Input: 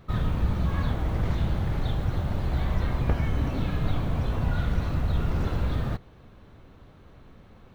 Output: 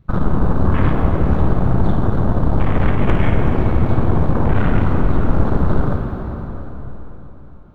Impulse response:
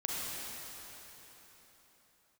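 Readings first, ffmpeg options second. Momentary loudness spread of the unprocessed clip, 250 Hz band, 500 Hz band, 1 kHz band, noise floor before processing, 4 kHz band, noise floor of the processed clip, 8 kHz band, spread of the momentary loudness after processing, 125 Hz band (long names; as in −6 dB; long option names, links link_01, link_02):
2 LU, +13.0 dB, +14.0 dB, +12.5 dB, −52 dBFS, +1.5 dB, −36 dBFS, can't be measured, 11 LU, +9.5 dB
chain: -filter_complex "[0:a]aeval=exprs='0.251*(cos(1*acos(clip(val(0)/0.251,-1,1)))-cos(1*PI/2))+0.00794*(cos(3*acos(clip(val(0)/0.251,-1,1)))-cos(3*PI/2))+0.0708*(cos(8*acos(clip(val(0)/0.251,-1,1)))-cos(8*PI/2))':channel_layout=same,afwtdn=0.02,asplit=2[link_01][link_02];[1:a]atrim=start_sample=2205,adelay=55[link_03];[link_02][link_03]afir=irnorm=-1:irlink=0,volume=-7dB[link_04];[link_01][link_04]amix=inputs=2:normalize=0,volume=5.5dB"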